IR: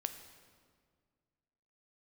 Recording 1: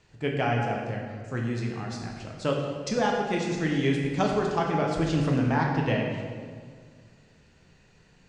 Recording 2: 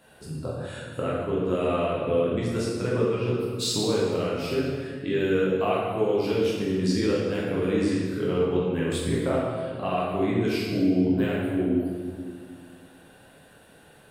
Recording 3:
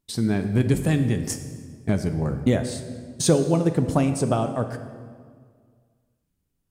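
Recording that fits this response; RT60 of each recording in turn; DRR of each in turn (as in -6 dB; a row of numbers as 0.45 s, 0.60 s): 3; 1.9 s, 1.9 s, 1.9 s; -1.0 dB, -6.5 dB, 7.5 dB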